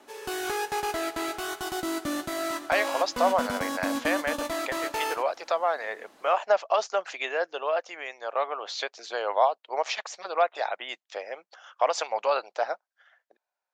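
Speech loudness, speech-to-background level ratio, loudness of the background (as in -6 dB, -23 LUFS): -29.0 LUFS, 2.5 dB, -31.5 LUFS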